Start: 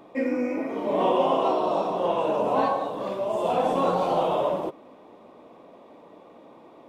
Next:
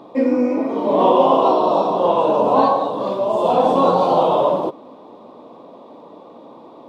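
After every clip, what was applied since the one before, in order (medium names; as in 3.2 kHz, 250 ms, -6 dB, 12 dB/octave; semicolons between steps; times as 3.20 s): graphic EQ 125/250/500/1000/2000/4000 Hz +6/+8/+6/+10/-5/+11 dB; trim -1 dB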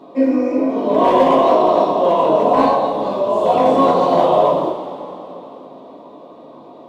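overload inside the chain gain 8 dB; two-slope reverb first 0.25 s, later 3.4 s, from -18 dB, DRR -5 dB; trim -5 dB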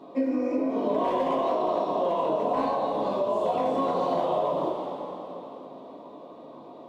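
compression, threshold -17 dBFS, peak gain reduction 9.5 dB; trim -5.5 dB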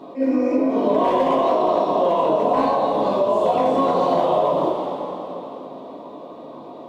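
attacks held to a fixed rise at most 250 dB/s; trim +7.5 dB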